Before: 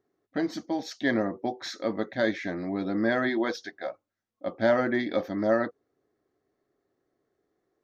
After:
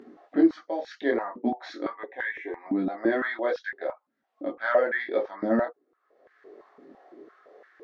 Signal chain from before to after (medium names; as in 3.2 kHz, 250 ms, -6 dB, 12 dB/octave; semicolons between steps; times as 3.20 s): low-pass 3.1 kHz 12 dB/octave; upward compressor, threshold -32 dBFS; 1.93–2.66 s: static phaser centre 910 Hz, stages 8; chorus voices 4, 0.33 Hz, delay 21 ms, depth 4.7 ms; step-sequenced high-pass 5.9 Hz 240–1600 Hz